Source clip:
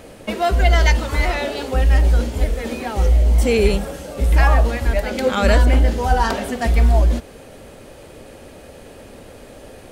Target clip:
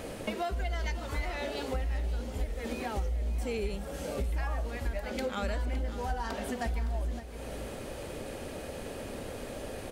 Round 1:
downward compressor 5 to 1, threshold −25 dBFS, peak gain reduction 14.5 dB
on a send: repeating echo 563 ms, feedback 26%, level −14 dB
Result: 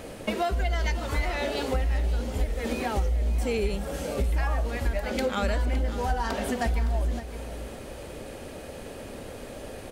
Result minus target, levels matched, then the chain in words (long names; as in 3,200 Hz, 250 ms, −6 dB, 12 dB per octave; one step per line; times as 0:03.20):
downward compressor: peak gain reduction −6.5 dB
downward compressor 5 to 1, threshold −33 dBFS, peak gain reduction 20.5 dB
on a send: repeating echo 563 ms, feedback 26%, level −14 dB